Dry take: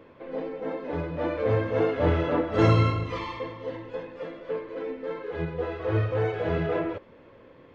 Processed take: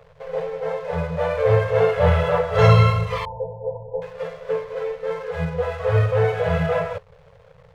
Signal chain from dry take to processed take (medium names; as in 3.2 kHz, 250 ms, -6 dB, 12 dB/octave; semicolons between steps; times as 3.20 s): hysteresis with a dead band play -45.5 dBFS; 3.25–4.02 s: brick-wall FIR low-pass 1 kHz; FFT band-reject 180–430 Hz; trim +7.5 dB